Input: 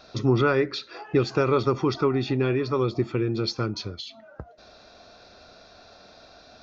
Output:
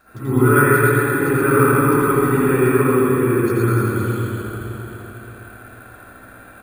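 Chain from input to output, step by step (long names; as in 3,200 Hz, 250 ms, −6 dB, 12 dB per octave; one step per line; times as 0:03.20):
graphic EQ with 15 bands 630 Hz −9 dB, 1,600 Hz +10 dB, 4,000 Hz −9 dB
harmonic and percussive parts rebalanced harmonic +3 dB
high-shelf EQ 3,000 Hz −8 dB
single-tap delay 83 ms −6.5 dB
convolution reverb RT60 3.9 s, pre-delay 51 ms, DRR −14 dB
bad sample-rate conversion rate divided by 4×, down filtered, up hold
level −6.5 dB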